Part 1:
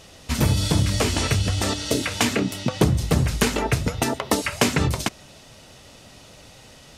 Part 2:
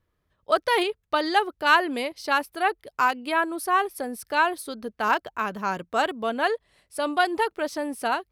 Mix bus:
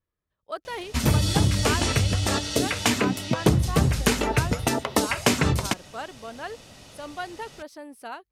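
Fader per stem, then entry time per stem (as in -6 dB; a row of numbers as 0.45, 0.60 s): -1.0, -12.0 dB; 0.65, 0.00 s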